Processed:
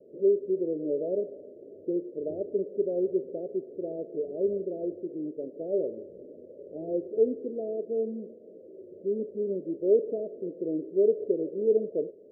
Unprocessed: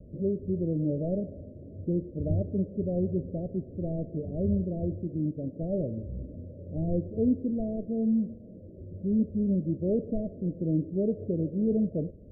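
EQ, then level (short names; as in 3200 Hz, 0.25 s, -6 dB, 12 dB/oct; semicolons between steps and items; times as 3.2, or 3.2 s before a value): resonant high-pass 410 Hz, resonance Q 4.9; -4.5 dB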